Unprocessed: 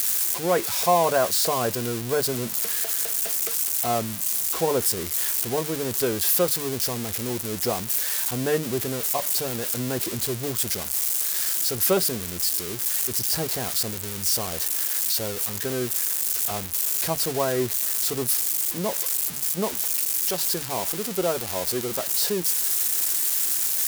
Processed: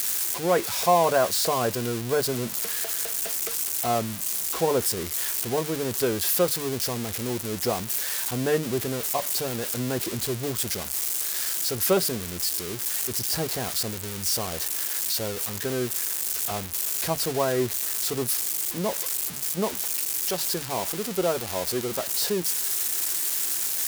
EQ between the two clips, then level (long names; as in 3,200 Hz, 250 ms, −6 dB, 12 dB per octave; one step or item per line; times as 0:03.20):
high-shelf EQ 7,300 Hz −4 dB
0.0 dB